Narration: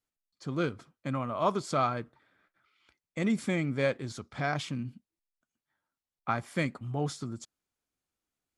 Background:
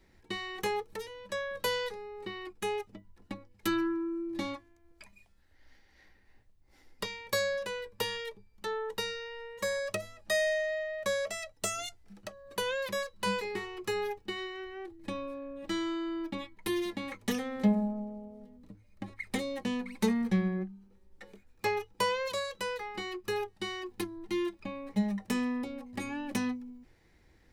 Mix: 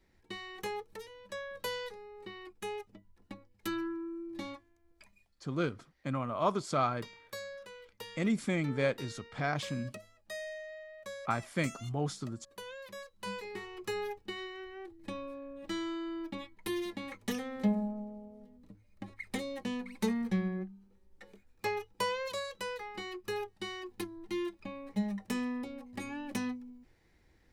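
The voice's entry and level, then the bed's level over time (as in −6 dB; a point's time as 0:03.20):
5.00 s, −2.0 dB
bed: 0:05.08 −6 dB
0:05.55 −13 dB
0:12.90 −13 dB
0:13.79 −3.5 dB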